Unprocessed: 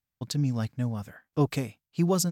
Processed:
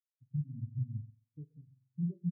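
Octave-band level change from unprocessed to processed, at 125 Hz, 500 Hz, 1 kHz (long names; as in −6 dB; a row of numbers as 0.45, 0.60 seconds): −8.5 dB, below −30 dB, below −40 dB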